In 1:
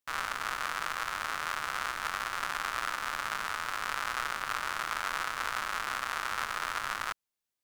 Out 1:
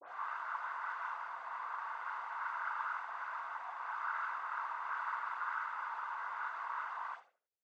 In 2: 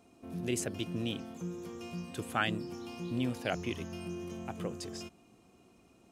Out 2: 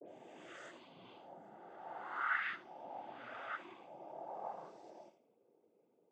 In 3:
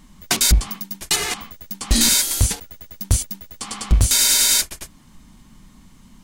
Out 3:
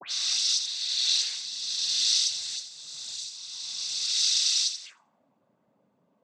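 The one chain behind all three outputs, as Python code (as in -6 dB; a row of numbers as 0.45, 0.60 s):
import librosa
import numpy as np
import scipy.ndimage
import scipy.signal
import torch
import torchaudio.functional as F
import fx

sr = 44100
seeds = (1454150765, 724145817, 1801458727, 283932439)

p1 = fx.spec_swells(x, sr, rise_s=2.55)
p2 = p1 + fx.echo_feedback(p1, sr, ms=80, feedback_pct=30, wet_db=-8.5, dry=0)
p3 = fx.auto_wah(p2, sr, base_hz=460.0, top_hz=4500.0, q=5.9, full_db=-17.0, direction='up')
p4 = fx.noise_vocoder(p3, sr, seeds[0], bands=16)
p5 = fx.dispersion(p4, sr, late='highs', ms=85.0, hz=2600.0)
y = p5 * 10.0 ** (-2.5 / 20.0)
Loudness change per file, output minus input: -7.0, -6.5, -8.0 LU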